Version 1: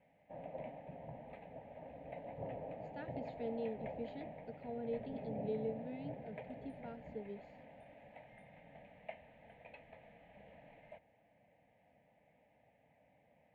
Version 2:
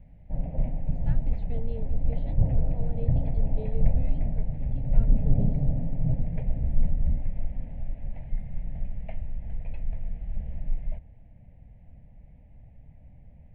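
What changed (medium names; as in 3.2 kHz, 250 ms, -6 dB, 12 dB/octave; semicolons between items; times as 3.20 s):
speech: entry -1.90 s; background: remove high-pass 520 Hz 12 dB/octave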